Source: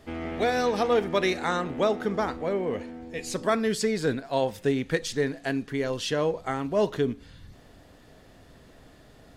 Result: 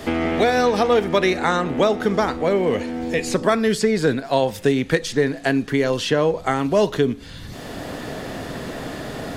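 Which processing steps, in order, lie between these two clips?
three bands compressed up and down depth 70%; trim +7 dB

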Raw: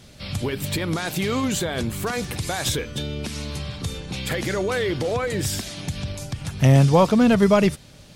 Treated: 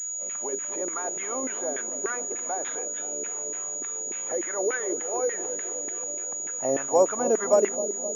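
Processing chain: CVSD coder 64 kbps; LFO band-pass saw down 3.4 Hz 400–1900 Hz; resonant low shelf 210 Hz -11.5 dB, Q 1.5; feedback echo behind a low-pass 260 ms, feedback 65%, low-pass 560 Hz, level -8 dB; class-D stage that switches slowly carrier 6.8 kHz

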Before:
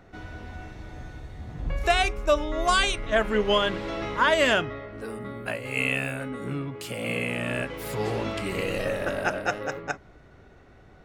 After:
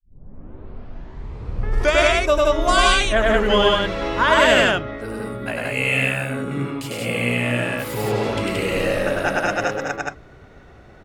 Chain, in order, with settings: tape start-up on the opening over 2.18 s; loudspeakers at several distances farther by 34 m -1 dB, 60 m -1 dB; trim +3 dB

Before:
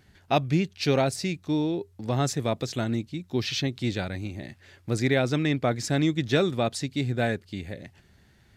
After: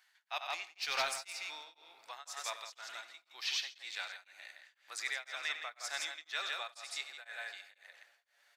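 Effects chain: high-pass 980 Hz 24 dB/octave; 0.78–1.47 s: waveshaping leveller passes 1; multi-tap echo 94/166 ms -11/-5.5 dB; on a send at -14 dB: reverberation RT60 3.0 s, pre-delay 3 ms; on the sum: tremolo of two beating tones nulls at 2 Hz; trim -4.5 dB

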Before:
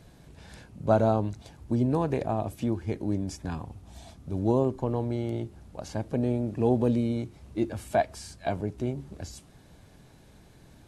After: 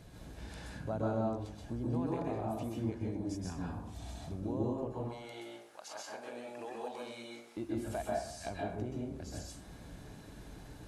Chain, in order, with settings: 4.92–7.57 s: high-pass 1 kHz 12 dB/octave; compression 2:1, threshold -46 dBFS, peak gain reduction 16 dB; plate-style reverb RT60 0.64 s, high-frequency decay 0.6×, pre-delay 115 ms, DRR -3.5 dB; trim -1.5 dB

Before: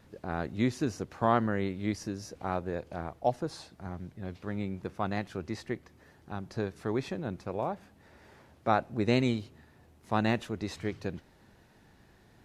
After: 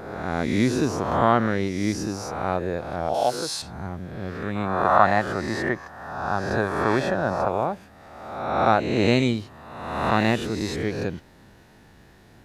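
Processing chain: reverse spectral sustain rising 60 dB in 1.24 s; 3.14–3.62 s: tilt EQ +3.5 dB/octave; 4.56–7.48 s: time-frequency box 530–1900 Hz +9 dB; trim +5.5 dB

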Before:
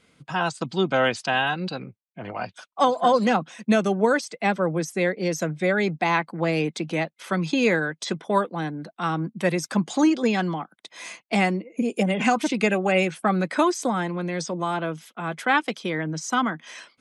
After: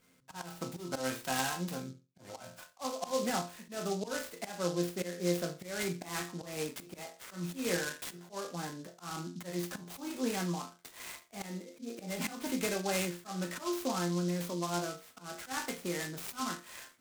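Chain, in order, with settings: chord resonator F2 sus4, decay 0.3 s; in parallel at -1.5 dB: compression, threshold -45 dBFS, peak gain reduction 19.5 dB; on the sum: slow attack 194 ms; reverberation, pre-delay 3 ms, DRR 11.5 dB; delay time shaken by noise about 5 kHz, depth 0.073 ms

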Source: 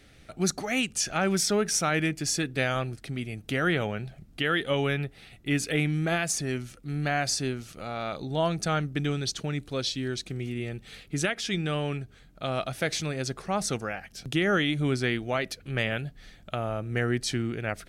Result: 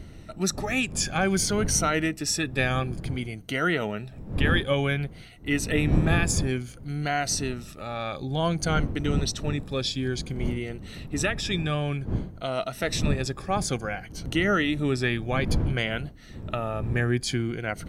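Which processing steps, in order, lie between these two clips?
drifting ripple filter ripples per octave 1.9, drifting -0.56 Hz, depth 10 dB; wind noise 160 Hz -32 dBFS

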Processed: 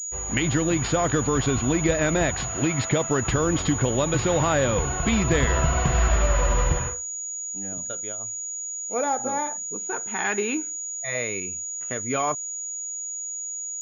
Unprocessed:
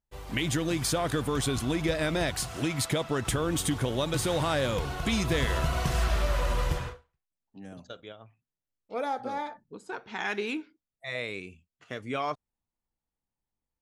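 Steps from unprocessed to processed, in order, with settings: vibrato 6.3 Hz 7.3 cents; class-D stage that switches slowly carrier 6.8 kHz; trim +6 dB

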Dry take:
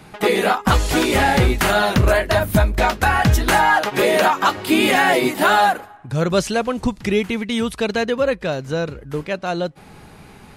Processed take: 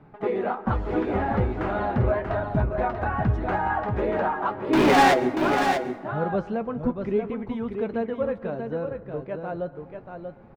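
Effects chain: low-pass 1.1 kHz 12 dB/octave; 4.73–5.14 s: waveshaping leveller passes 5; flange 0.41 Hz, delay 6.9 ms, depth 3.5 ms, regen +51%; delay 636 ms -6.5 dB; plate-style reverb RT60 1.2 s, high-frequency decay 0.45×, pre-delay 110 ms, DRR 16.5 dB; trim -3.5 dB

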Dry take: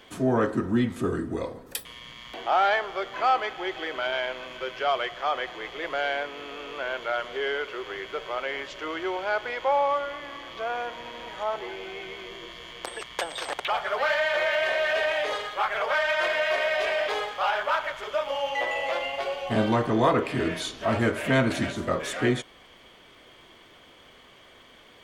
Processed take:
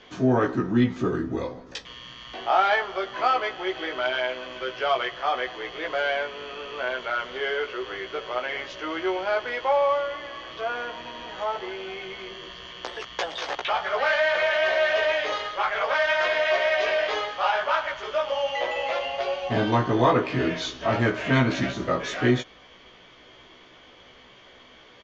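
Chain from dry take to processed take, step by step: steep low-pass 6.7 kHz 72 dB/octave; doubling 16 ms -3 dB

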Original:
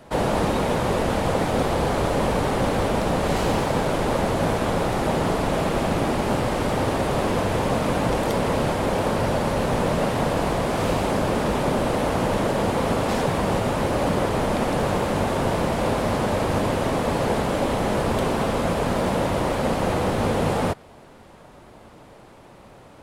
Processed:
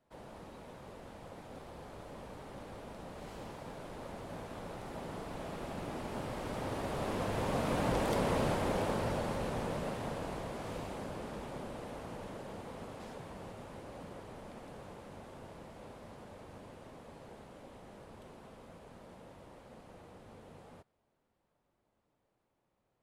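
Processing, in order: Doppler pass-by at 8.22 s, 8 m/s, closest 6.7 m; trim -9 dB

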